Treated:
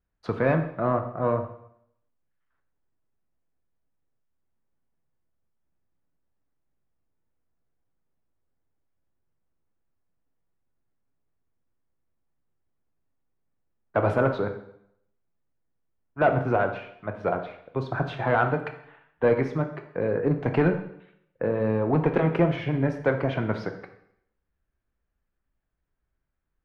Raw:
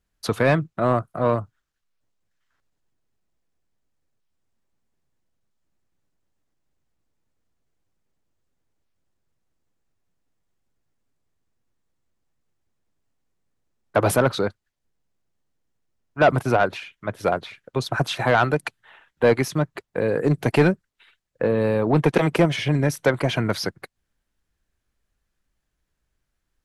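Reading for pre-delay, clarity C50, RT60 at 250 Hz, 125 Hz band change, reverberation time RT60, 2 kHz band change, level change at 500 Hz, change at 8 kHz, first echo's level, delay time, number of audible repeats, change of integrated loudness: 5 ms, 9.5 dB, 0.75 s, −3.5 dB, 0.70 s, −5.5 dB, −3.5 dB, below −25 dB, no echo audible, no echo audible, no echo audible, −4.0 dB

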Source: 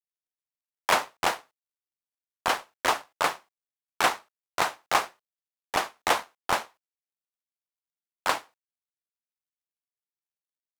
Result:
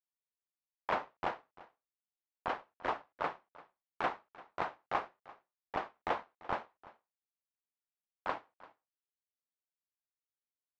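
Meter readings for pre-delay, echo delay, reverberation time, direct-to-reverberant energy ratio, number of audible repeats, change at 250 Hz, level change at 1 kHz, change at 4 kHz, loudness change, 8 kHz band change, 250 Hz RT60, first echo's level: no reverb audible, 342 ms, no reverb audible, no reverb audible, 1, −7.0 dB, −10.0 dB, −20.0 dB, −11.5 dB, below −30 dB, no reverb audible, −20.0 dB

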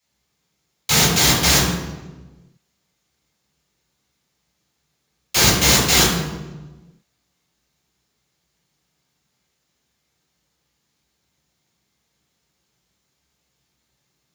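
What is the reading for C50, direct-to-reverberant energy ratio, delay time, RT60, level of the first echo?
1.5 dB, −7.0 dB, no echo audible, 1.2 s, no echo audible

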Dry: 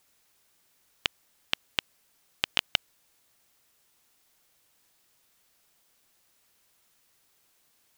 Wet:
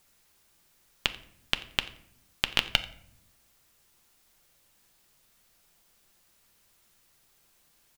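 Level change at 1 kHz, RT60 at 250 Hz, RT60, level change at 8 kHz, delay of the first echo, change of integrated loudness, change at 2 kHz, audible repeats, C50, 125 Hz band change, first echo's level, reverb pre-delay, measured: +2.5 dB, 1.2 s, 0.70 s, +1.5 dB, 88 ms, +1.5 dB, +2.0 dB, 1, 15.0 dB, +7.0 dB, −21.0 dB, 5 ms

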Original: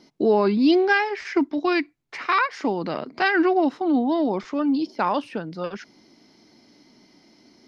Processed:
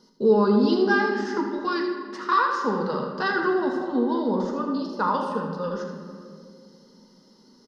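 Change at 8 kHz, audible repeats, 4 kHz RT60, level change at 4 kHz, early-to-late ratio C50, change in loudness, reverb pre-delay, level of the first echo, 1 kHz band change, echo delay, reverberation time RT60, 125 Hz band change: can't be measured, 1, 1.2 s, −3.0 dB, 3.0 dB, −1.5 dB, 4 ms, −8.5 dB, −0.5 dB, 81 ms, 2.3 s, +3.5 dB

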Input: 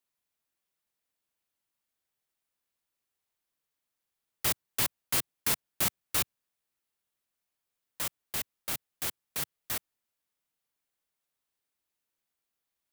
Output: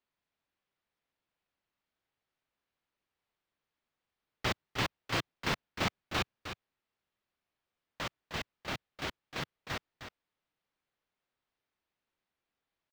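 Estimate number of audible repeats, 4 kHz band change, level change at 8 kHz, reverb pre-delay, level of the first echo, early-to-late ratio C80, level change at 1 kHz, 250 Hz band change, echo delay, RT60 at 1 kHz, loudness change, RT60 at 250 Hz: 1, −1.5 dB, −15.0 dB, no reverb audible, −9.5 dB, no reverb audible, +3.5 dB, +4.0 dB, 309 ms, no reverb audible, −5.5 dB, no reverb audible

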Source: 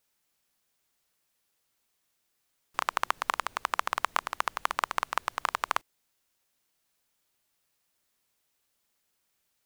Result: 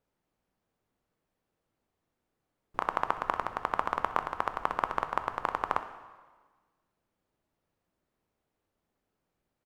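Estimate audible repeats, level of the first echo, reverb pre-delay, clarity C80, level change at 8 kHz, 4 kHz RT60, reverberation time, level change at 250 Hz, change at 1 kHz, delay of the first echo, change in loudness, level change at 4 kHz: 1, −18.0 dB, 5 ms, 12.5 dB, below −15 dB, 1.3 s, 1.4 s, +7.5 dB, 0.0 dB, 64 ms, −1.0 dB, −11.0 dB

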